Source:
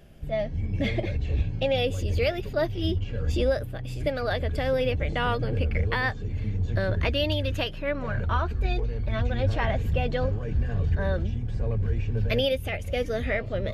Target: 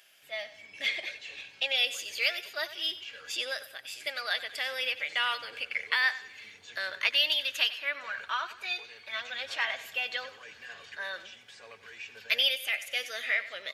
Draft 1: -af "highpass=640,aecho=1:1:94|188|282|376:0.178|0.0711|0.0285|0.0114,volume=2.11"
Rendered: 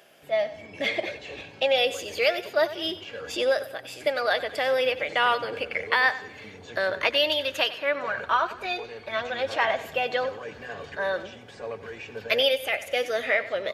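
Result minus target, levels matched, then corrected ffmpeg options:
500 Hz band +13.5 dB
-af "highpass=2000,aecho=1:1:94|188|282|376:0.178|0.0711|0.0285|0.0114,volume=2.11"

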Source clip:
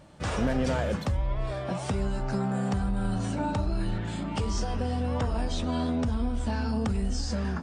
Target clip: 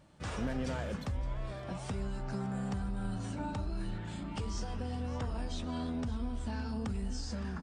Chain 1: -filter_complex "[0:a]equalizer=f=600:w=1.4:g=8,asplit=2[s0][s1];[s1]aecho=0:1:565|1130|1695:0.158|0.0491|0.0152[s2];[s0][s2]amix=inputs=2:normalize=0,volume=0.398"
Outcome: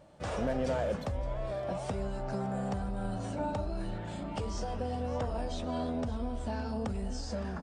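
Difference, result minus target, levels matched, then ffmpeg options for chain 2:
500 Hz band +6.0 dB
-filter_complex "[0:a]equalizer=f=600:w=1.4:g=-3,asplit=2[s0][s1];[s1]aecho=0:1:565|1130|1695:0.158|0.0491|0.0152[s2];[s0][s2]amix=inputs=2:normalize=0,volume=0.398"

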